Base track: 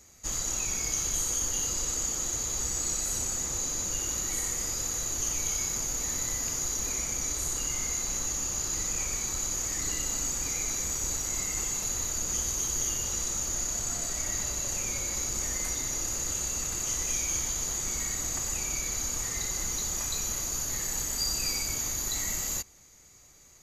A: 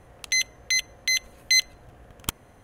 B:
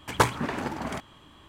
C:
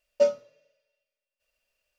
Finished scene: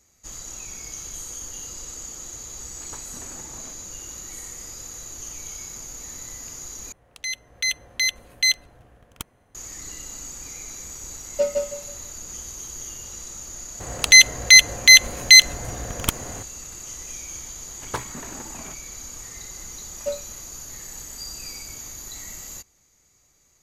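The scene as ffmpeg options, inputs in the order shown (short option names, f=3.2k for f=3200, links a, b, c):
-filter_complex "[2:a]asplit=2[a][b];[1:a]asplit=2[c][d];[3:a]asplit=2[e][f];[0:a]volume=-6dB[g];[a]alimiter=limit=-14.5dB:level=0:latency=1:release=314[h];[c]dynaudnorm=f=140:g=9:m=11dB[i];[e]aecho=1:1:161|322|483|644:0.708|0.191|0.0516|0.0139[j];[d]alimiter=level_in=17.5dB:limit=-1dB:release=50:level=0:latency=1[k];[g]asplit=2[l][m];[l]atrim=end=6.924[n];[i]atrim=end=2.63,asetpts=PTS-STARTPTS,volume=-8dB[o];[m]atrim=start=9.546[p];[h]atrim=end=1.48,asetpts=PTS-STARTPTS,volume=-15dB,afade=t=in:d=0.004:c=hsin,afade=t=out:st=1.476:d=0.004:c=hsin,adelay=2730[q];[j]atrim=end=1.98,asetpts=PTS-STARTPTS,volume=-1dB,afade=t=in:d=0.004:c=hsin,afade=t=out:st=1.976:d=0.004:c=hsin,adelay=11190[r];[k]atrim=end=2.63,asetpts=PTS-STARTPTS,volume=-1dB,afade=t=in:d=0.004:c=hsin,afade=t=out:st=2.626:d=0.004:c=hsin,adelay=608580S[s];[b]atrim=end=1.48,asetpts=PTS-STARTPTS,volume=-9dB,afade=t=in:d=0.004:c=hsin,afade=t=out:st=1.476:d=0.004:c=hsin,adelay=17740[t];[f]atrim=end=1.98,asetpts=PTS-STARTPTS,volume=-7dB,afade=t=in:d=0.004:c=hsin,afade=t=out:st=1.976:d=0.004:c=hsin,adelay=19860[u];[n][o]acrossfade=d=0.004:c1=hsin:c2=hsin[v];[v][p]acrossfade=d=0.004:c1=hsin:c2=hsin[w];[w][q][r][s][t][u]amix=inputs=6:normalize=0"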